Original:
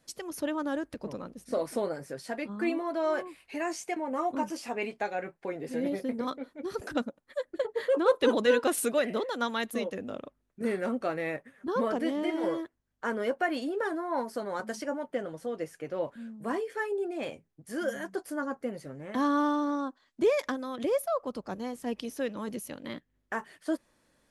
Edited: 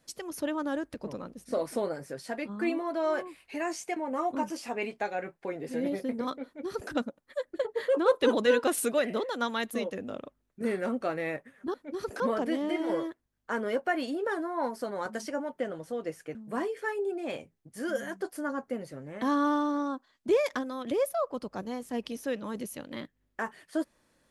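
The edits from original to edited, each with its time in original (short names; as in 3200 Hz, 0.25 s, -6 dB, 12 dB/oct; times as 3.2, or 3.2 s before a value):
6.45–6.91 copy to 11.74
15.89–16.28 cut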